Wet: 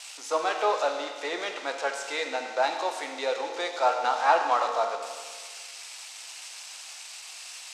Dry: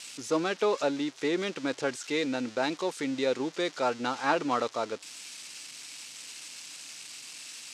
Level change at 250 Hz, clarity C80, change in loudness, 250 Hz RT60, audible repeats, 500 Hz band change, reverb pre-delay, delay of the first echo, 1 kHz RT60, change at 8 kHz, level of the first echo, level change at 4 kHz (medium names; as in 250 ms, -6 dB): -12.5 dB, 6.5 dB, +4.0 dB, 1.6 s, no echo, +1.0 dB, 7 ms, no echo, 1.6 s, +1.5 dB, no echo, +2.0 dB